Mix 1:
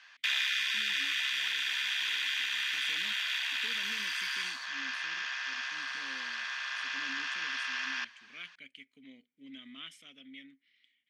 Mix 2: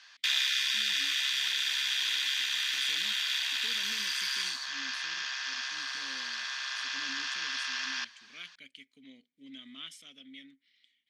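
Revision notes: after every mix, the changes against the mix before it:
master: add resonant high shelf 3.3 kHz +6 dB, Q 1.5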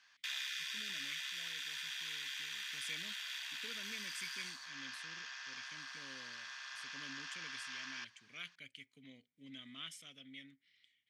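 background -10.0 dB; master: add graphic EQ 125/250/4000 Hz +11/-7/-5 dB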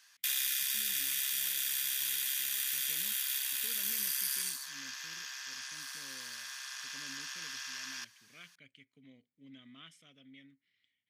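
speech: add treble shelf 2.1 kHz -11 dB; background: remove distance through air 170 m

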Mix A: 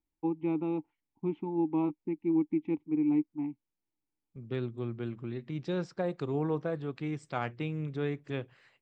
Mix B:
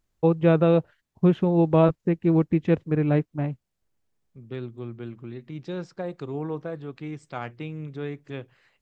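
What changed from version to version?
first voice: remove vowel filter u; second voice: remove band-stop 6.5 kHz, Q 20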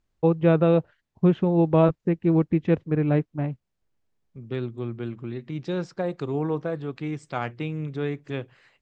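first voice: add distance through air 70 m; second voice +4.5 dB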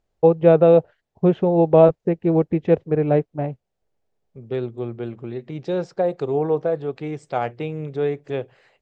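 master: add high-order bell 570 Hz +8.5 dB 1.3 oct

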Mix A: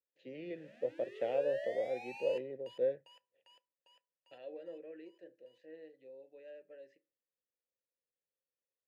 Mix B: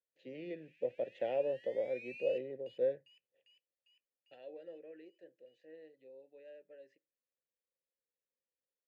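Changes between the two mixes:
second voice: send -10.0 dB; background: add ladder high-pass 2.2 kHz, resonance 70%; master: add peaking EQ 1.2 kHz -7.5 dB 0.24 oct

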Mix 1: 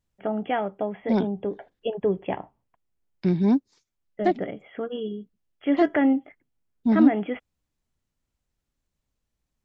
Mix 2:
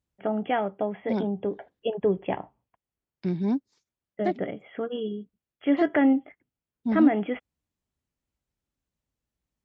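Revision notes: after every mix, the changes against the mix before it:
second voice -5.5 dB; master: add high-pass 44 Hz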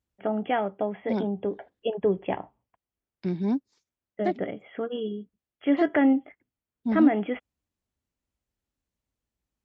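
master: add peaking EQ 150 Hz -8 dB 0.22 oct

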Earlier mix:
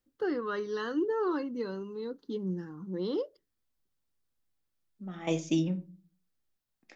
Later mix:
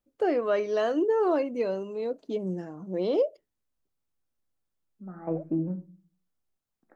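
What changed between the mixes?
first voice: remove static phaser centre 2.4 kHz, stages 6; second voice: add elliptic low-pass 1.5 kHz, stop band 60 dB

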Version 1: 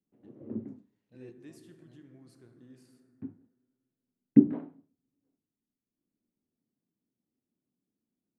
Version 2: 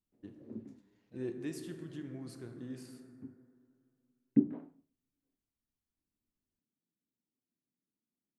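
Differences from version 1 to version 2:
first voice +10.5 dB; background -8.0 dB

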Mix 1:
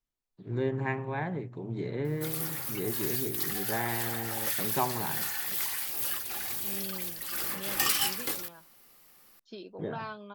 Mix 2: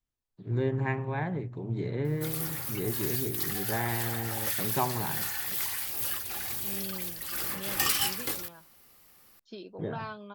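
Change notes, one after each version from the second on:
master: add peaking EQ 77 Hz +11 dB 1.1 oct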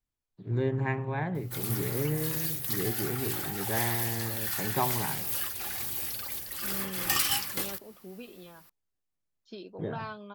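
background: entry -0.70 s

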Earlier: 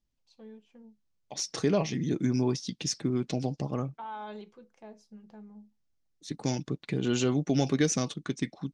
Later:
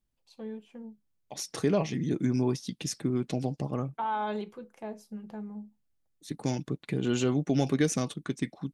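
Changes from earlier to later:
first voice +9.0 dB; master: remove resonant low-pass 5.9 kHz, resonance Q 1.7

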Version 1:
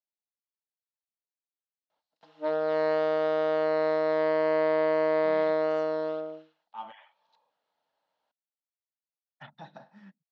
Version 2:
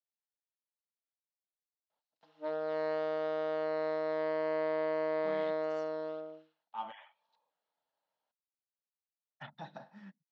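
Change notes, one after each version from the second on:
background -8.0 dB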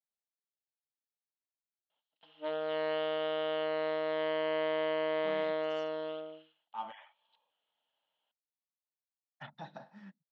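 background: add resonant low-pass 3.1 kHz, resonance Q 7.4

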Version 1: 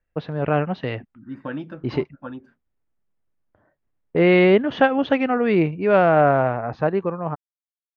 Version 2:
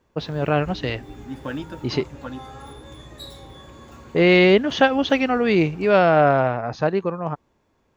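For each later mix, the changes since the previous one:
background: unmuted; master: remove low-pass 2.2 kHz 12 dB/octave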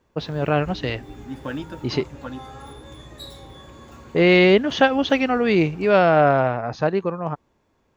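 no change

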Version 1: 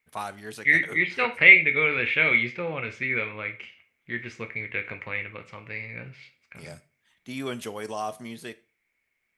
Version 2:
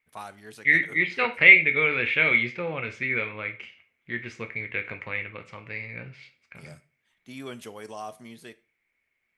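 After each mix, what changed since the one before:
first voice -6.0 dB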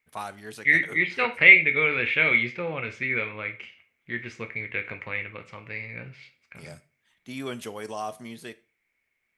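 first voice +4.5 dB

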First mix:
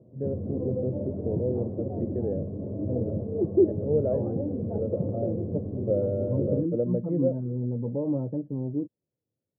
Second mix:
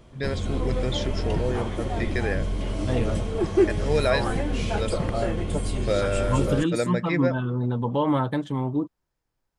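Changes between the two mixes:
second voice +3.5 dB; master: remove elliptic band-pass 100–550 Hz, stop band 80 dB

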